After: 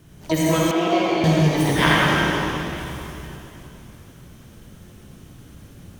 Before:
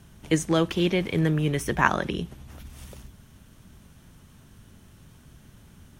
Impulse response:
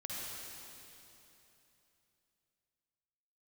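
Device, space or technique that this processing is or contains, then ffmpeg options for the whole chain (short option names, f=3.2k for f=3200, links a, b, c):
shimmer-style reverb: -filter_complex "[0:a]asplit=2[a][b];[b]asetrate=88200,aresample=44100,atempo=0.5,volume=-4dB[c];[a][c]amix=inputs=2:normalize=0[d];[1:a]atrim=start_sample=2205[e];[d][e]afir=irnorm=-1:irlink=0,asettb=1/sr,asplit=3[f][g][h];[f]atrim=end=0.714[i];[g]atrim=start=0.71:end=1.24,asetpts=PTS-STARTPTS,afade=t=in:d=0.004:c=qsin,afade=t=out:st=0.526:d=0.004:c=qsin,acrossover=split=250 3900:gain=0.158 1 0.178[j][k][l];[j][k][l]amix=inputs=3:normalize=0[m];[h]atrim=start=1.236[n];[i][m]acrossfade=d=0.004:c1=hsin:c2=qsin[o];[o][n]acrossfade=d=0.004:c1=qsin:c2=hsin,volume=4dB"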